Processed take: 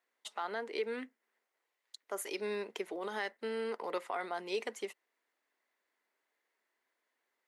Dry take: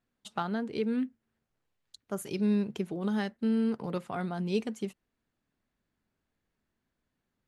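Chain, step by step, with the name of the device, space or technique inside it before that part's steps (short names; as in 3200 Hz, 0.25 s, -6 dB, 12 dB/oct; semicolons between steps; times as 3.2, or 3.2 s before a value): laptop speaker (HPF 400 Hz 24 dB/oct; bell 980 Hz +4 dB 0.32 oct; bell 2000 Hz +9.5 dB 0.29 oct; limiter -27 dBFS, peak gain reduction 10 dB); gain +1 dB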